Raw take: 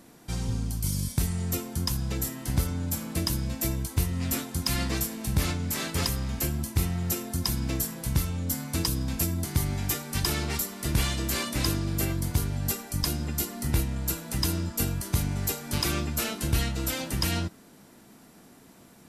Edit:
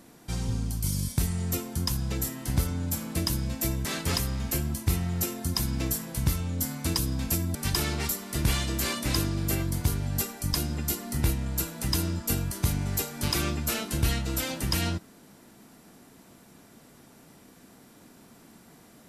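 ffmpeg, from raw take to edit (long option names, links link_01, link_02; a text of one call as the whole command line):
ffmpeg -i in.wav -filter_complex "[0:a]asplit=3[link_01][link_02][link_03];[link_01]atrim=end=3.852[link_04];[link_02]atrim=start=5.738:end=9.442[link_05];[link_03]atrim=start=10.048[link_06];[link_04][link_05]acrossfade=duration=0.004:curve1=hsin:curve2=hsin[link_07];[link_07][link_06]acrossfade=duration=0.004:curve1=hsin:curve2=hsin" out.wav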